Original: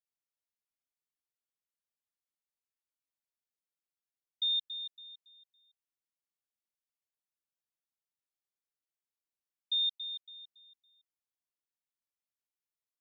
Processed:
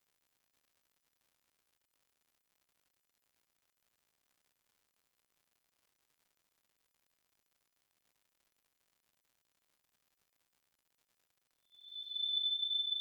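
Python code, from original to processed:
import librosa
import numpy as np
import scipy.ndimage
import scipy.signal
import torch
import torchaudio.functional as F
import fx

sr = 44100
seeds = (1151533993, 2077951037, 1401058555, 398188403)

y = fx.freq_snap(x, sr, grid_st=3)
y = fx.paulstretch(y, sr, seeds[0], factor=13.0, window_s=0.05, from_s=3.48)
y = fx.dmg_crackle(y, sr, seeds[1], per_s=180.0, level_db=-56.0)
y = F.gain(torch.from_numpy(y), -5.0).numpy()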